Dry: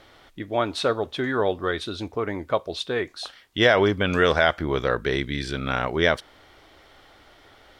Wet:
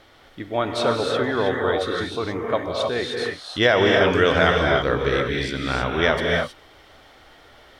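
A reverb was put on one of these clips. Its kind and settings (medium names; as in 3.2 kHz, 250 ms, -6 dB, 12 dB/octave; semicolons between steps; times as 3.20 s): gated-style reverb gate 340 ms rising, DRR 0 dB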